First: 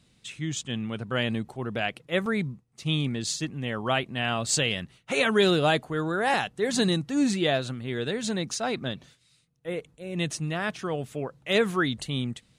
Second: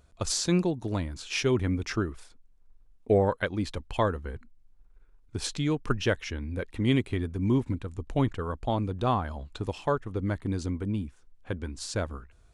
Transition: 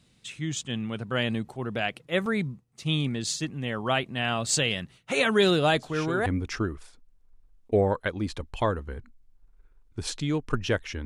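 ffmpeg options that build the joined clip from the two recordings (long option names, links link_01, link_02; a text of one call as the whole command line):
ffmpeg -i cue0.wav -i cue1.wav -filter_complex "[1:a]asplit=2[link_01][link_02];[0:a]apad=whole_dur=11.05,atrim=end=11.05,atrim=end=6.262[link_03];[link_02]atrim=start=1.628:end=6.42[link_04];[link_01]atrim=start=1.1:end=1.63,asetpts=PTS-STARTPTS,volume=-10dB,afade=type=in:duration=0.004:curve=hsin,afade=type=out:start_time=0.526:duration=0.004:curve=hsin,adelay=252693S[link_05];[link_03][link_04]acrossfade=duration=0.004:curve1=hsin:curve2=hsin[link_06];[link_06][link_05]amix=inputs=2:normalize=0" out.wav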